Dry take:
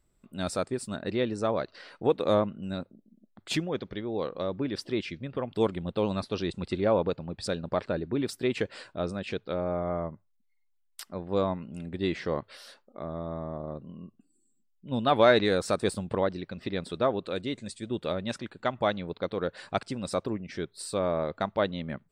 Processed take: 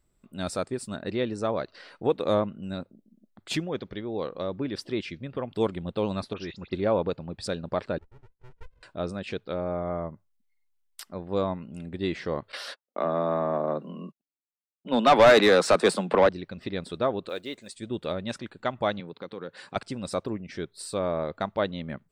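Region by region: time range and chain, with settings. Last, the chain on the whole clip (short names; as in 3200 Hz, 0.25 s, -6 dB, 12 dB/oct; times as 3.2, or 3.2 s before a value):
6.33–6.73 rippled Chebyshev low-pass 7200 Hz, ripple 6 dB + dispersion highs, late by 56 ms, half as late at 2800 Hz
7.98–8.83 Butterworth band-pass 520 Hz, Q 6.1 + running maximum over 65 samples
12.52–16.29 steep high-pass 150 Hz 96 dB/oct + gate -52 dBFS, range -42 dB + overdrive pedal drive 21 dB, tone 2600 Hz, clips at -7.5 dBFS
17.29–17.77 block floating point 7-bit + tone controls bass -14 dB, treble -1 dB
19–19.76 HPF 120 Hz 24 dB/oct + notch 650 Hz, Q 5.2 + compressor 2:1, threshold -38 dBFS
whole clip: dry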